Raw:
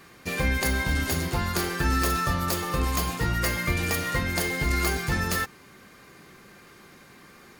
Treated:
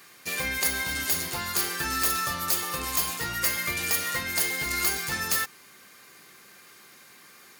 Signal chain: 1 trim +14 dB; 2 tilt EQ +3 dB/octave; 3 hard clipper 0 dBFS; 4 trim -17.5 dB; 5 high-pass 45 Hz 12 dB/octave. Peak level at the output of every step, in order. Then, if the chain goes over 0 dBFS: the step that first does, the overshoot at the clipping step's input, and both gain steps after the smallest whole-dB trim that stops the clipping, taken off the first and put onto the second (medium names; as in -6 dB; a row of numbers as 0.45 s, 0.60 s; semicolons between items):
+1.5 dBFS, +8.5 dBFS, 0.0 dBFS, -17.5 dBFS, -16.5 dBFS; step 1, 8.5 dB; step 1 +5 dB, step 4 -8.5 dB